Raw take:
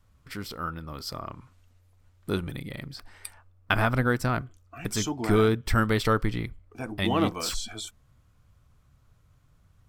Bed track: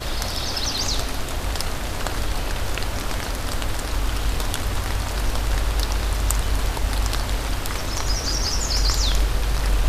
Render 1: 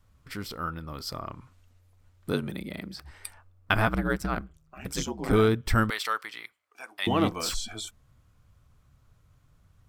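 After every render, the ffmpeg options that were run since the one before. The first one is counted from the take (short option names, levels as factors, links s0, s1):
-filter_complex "[0:a]asettb=1/sr,asplit=3[s0][s1][s2];[s0]atrim=end=2.324[s3];[s1]atrim=start=2.32:end=3.11,asetpts=PTS-STARTPTS,afade=t=in:d=0.004:c=qsin,afade=t=out:st=0.786:d=0.004:c=qsin,afreqshift=53[s4];[s2]atrim=start=3.106[s5];[s3][s4]acrossfade=d=0.004:c1=hsin:c2=qsin[s6];[s6][s5]acrossfade=d=0.004:c1=qsin:c2=hsin,asettb=1/sr,asplit=3[s7][s8][s9];[s7]atrim=end=3.874[s10];[s8]atrim=start=3.87:end=5.33,asetpts=PTS-STARTPTS,afade=t=in:d=0.004:c=qsin,afade=t=out:st=1.456:d=0.004:c=qsin,aeval=exprs='val(0)*sin(2*PI*67*n/s)':c=same[s11];[s9]atrim=start=5.326[s12];[s10][s11]acrossfade=d=0.004:c1=hsin:c2=qsin[s13];[s13][s12]acrossfade=d=0.004:c1=qsin:c2=hsin,asettb=1/sr,asplit=3[s14][s15][s16];[s14]atrim=end=5.904[s17];[s15]atrim=start=5.9:end=7.07,asetpts=PTS-STARTPTS,afade=t=in:d=0.004:c=qsin,afade=t=out:st=1.166:d=0.004:c=qsin,highpass=1100[s18];[s16]atrim=start=7.066[s19];[s17][s18]acrossfade=d=0.004:c1=hsin:c2=qsin[s20];[s20][s19]acrossfade=d=0.004:c1=qsin:c2=hsin"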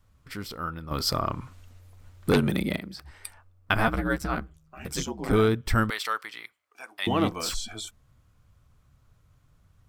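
-filter_complex "[0:a]asettb=1/sr,asplit=3[s0][s1][s2];[s0]atrim=end=0.914[s3];[s1]atrim=start=0.91:end=2.77,asetpts=PTS-STARTPTS,afade=t=in:d=0.004:c=qsin,afade=t=out:st=1.856:d=0.004:c=qsin,aeval=exprs='0.211*sin(PI/2*2*val(0)/0.211)':c=same[s4];[s2]atrim=start=2.766[s5];[s3][s4]acrossfade=d=0.004:c1=hsin:c2=qsin[s6];[s6][s5]acrossfade=d=0.004:c1=qsin:c2=hsin,asettb=1/sr,asplit=3[s7][s8][s9];[s7]atrim=end=3.774[s10];[s8]atrim=start=3.77:end=5,asetpts=PTS-STARTPTS,afade=t=in:d=0.004:c=qsin,afade=t=out:st=1.226:d=0.004:c=qsin,asplit=2[s11][s12];[s12]adelay=13,volume=0.596[s13];[s11][s13]amix=inputs=2:normalize=0,atrim=end_sample=54243[s14];[s9]atrim=start=4.996[s15];[s10][s14]acrossfade=d=0.004:c1=hsin:c2=qsin[s16];[s16][s15]acrossfade=d=0.004:c1=qsin:c2=hsin"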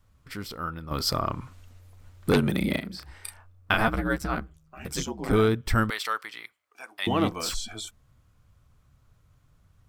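-filter_complex "[0:a]asettb=1/sr,asplit=3[s0][s1][s2];[s0]atrim=end=2.594[s3];[s1]atrim=start=2.59:end=3.81,asetpts=PTS-STARTPTS,afade=t=in:d=0.004:c=qsin,afade=t=out:st=1.216:d=0.004:c=qsin,asplit=2[s4][s5];[s5]adelay=33,volume=0.708[s6];[s4][s6]amix=inputs=2:normalize=0,atrim=end_sample=53802[s7];[s2]atrim=start=3.806[s8];[s3][s7]acrossfade=d=0.004:c1=hsin:c2=qsin[s9];[s9][s8]acrossfade=d=0.004:c1=qsin:c2=hsin"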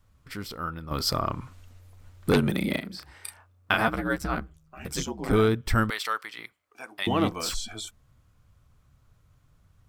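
-filter_complex "[0:a]asettb=1/sr,asplit=3[s0][s1][s2];[s0]atrim=end=2.524[s3];[s1]atrim=start=2.52:end=4.18,asetpts=PTS-STARTPTS,afade=t=in:d=0.004:c=qsin,afade=t=out:st=1.656:d=0.004:c=qsin,highpass=f=130:p=1[s4];[s2]atrim=start=4.176[s5];[s3][s4]acrossfade=d=0.004:c1=hsin:c2=qsin[s6];[s6][s5]acrossfade=d=0.004:c1=qsin:c2=hsin,asettb=1/sr,asplit=3[s7][s8][s9];[s7]atrim=end=6.384[s10];[s8]atrim=start=6.38:end=7.03,asetpts=PTS-STARTPTS,afade=t=in:d=0.004:c=qsin,afade=t=out:st=0.646:d=0.004:c=qsin,lowshelf=f=410:g=11.5[s11];[s9]atrim=start=7.026[s12];[s10][s11]acrossfade=d=0.004:c1=hsin:c2=qsin[s13];[s13][s12]acrossfade=d=0.004:c1=qsin:c2=hsin"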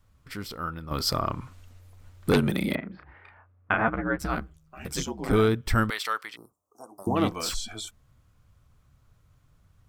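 -filter_complex "[0:a]asettb=1/sr,asplit=3[s0][s1][s2];[s0]atrim=end=2.754[s3];[s1]atrim=start=2.75:end=4.19,asetpts=PTS-STARTPTS,afade=t=in:d=0.004:c=qsin,afade=t=out:st=1.436:d=0.004:c=qsin,lowpass=f=2200:w=0.5412,lowpass=f=2200:w=1.3066[s4];[s2]atrim=start=4.186[s5];[s3][s4]acrossfade=d=0.004:c1=hsin:c2=qsin[s6];[s6][s5]acrossfade=d=0.004:c1=qsin:c2=hsin,asplit=3[s7][s8][s9];[s7]afade=t=out:st=6.35:d=0.02[s10];[s8]asuperstop=centerf=2600:order=12:qfactor=0.59,afade=t=in:st=6.35:d=0.02,afade=t=out:st=7.15:d=0.02[s11];[s9]afade=t=in:st=7.15:d=0.02[s12];[s10][s11][s12]amix=inputs=3:normalize=0"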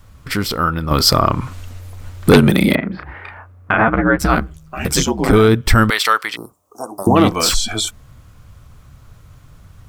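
-filter_complex "[0:a]asplit=2[s0][s1];[s1]acompressor=threshold=0.02:ratio=6,volume=1.12[s2];[s0][s2]amix=inputs=2:normalize=0,alimiter=level_in=3.76:limit=0.891:release=50:level=0:latency=1"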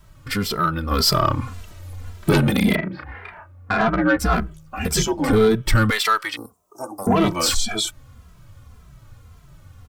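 -filter_complex "[0:a]asoftclip=type=tanh:threshold=0.447,asplit=2[s0][s1];[s1]adelay=2.6,afreqshift=-1.8[s2];[s0][s2]amix=inputs=2:normalize=1"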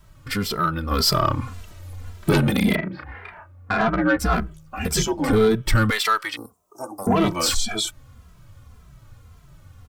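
-af "volume=0.841"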